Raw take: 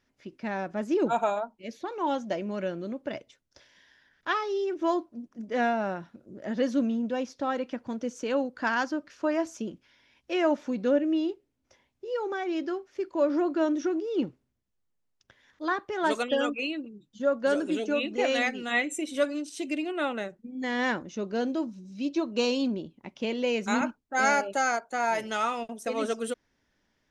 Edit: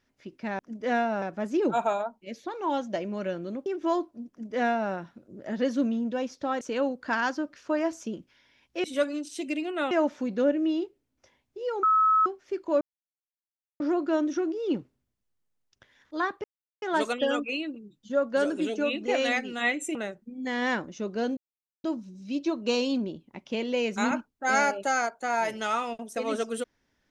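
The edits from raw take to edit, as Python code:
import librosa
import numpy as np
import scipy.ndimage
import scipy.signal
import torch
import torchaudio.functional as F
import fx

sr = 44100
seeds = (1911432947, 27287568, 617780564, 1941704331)

y = fx.edit(x, sr, fx.cut(start_s=3.03, length_s=1.61),
    fx.duplicate(start_s=5.27, length_s=0.63, to_s=0.59),
    fx.cut(start_s=7.59, length_s=0.56),
    fx.bleep(start_s=12.3, length_s=0.43, hz=1290.0, db=-18.0),
    fx.insert_silence(at_s=13.28, length_s=0.99),
    fx.insert_silence(at_s=15.92, length_s=0.38),
    fx.move(start_s=19.05, length_s=1.07, to_s=10.38),
    fx.insert_silence(at_s=21.54, length_s=0.47), tone=tone)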